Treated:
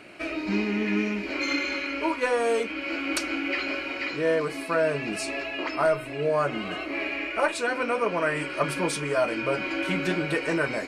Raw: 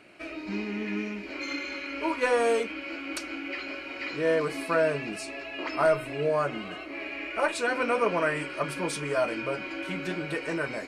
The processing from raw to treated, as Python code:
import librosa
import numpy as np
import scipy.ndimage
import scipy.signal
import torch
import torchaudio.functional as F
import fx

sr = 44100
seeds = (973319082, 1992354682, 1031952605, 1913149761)

y = fx.rider(x, sr, range_db=4, speed_s=0.5)
y = y * librosa.db_to_amplitude(3.0)